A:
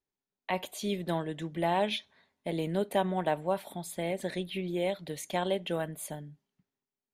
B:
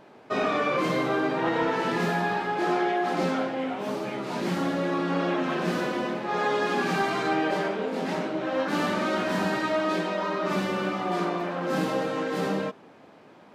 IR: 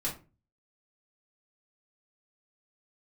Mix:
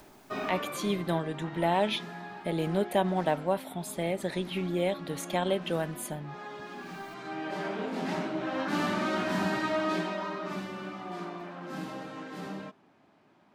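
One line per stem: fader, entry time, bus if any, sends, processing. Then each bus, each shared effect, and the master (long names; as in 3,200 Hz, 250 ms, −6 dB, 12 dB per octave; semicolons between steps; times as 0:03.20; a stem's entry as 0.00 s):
+1.5 dB, 0.00 s, no send, upward compression, threshold −38 dBFS
0:10.00 −3 dB → 0:10.69 −11 dB, 0.00 s, no send, parametric band 490 Hz −13 dB 0.21 octaves; automatic ducking −13 dB, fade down 1.05 s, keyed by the first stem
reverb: not used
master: low-shelf EQ 130 Hz +4 dB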